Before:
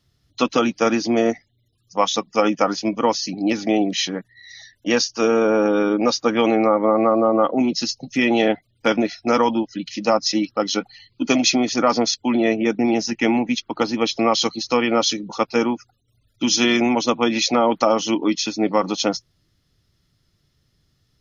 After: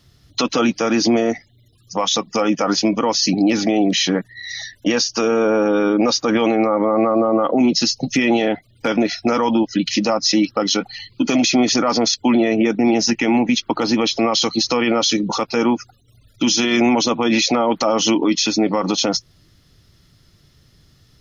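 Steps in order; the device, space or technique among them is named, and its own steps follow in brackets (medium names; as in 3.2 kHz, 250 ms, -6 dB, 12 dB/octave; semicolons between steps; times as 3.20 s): loud club master (compression 1.5:1, threshold -26 dBFS, peak gain reduction 5.5 dB; hard clipper -8.5 dBFS, distortion -45 dB; loudness maximiser +19 dB); trim -7 dB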